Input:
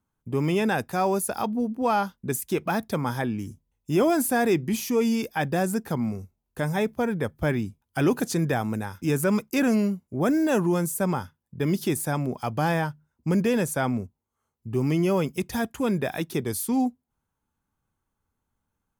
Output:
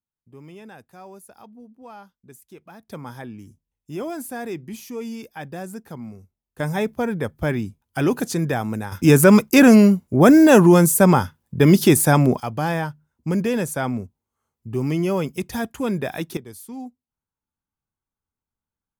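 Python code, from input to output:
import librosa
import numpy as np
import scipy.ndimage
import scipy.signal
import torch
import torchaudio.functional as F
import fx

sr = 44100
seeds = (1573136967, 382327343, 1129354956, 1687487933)

y = fx.gain(x, sr, db=fx.steps((0.0, -18.5), (2.88, -8.5), (6.6, 2.0), (8.92, 11.5), (12.4, 1.0), (16.37, -11.0)))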